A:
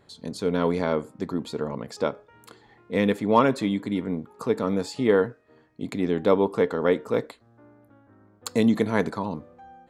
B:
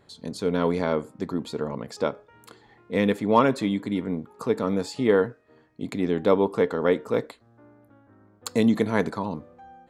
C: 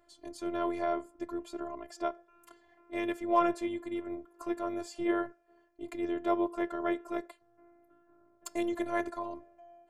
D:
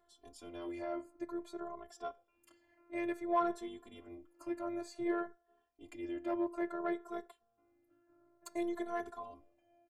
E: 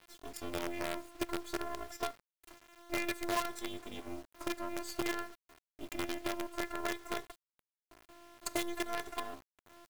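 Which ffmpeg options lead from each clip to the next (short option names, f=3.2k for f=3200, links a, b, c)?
-af anull
-af "afftfilt=real='hypot(re,im)*cos(PI*b)':imag='0':win_size=512:overlap=0.75,equalizer=f=250:t=o:w=0.33:g=-8,equalizer=f=630:t=o:w=0.33:g=7,equalizer=f=4k:t=o:w=0.33:g=-10,volume=-4.5dB"
-filter_complex "[0:a]asoftclip=type=tanh:threshold=-18.5dB,asplit=2[a][b];[b]adelay=2.3,afreqshift=0.56[c];[a][c]amix=inputs=2:normalize=1,volume=-3dB"
-filter_complex "[0:a]acrossover=split=2100[a][b];[a]acompressor=threshold=-45dB:ratio=20[c];[c][b]amix=inputs=2:normalize=0,acrusher=bits=8:dc=4:mix=0:aa=0.000001,volume=12dB"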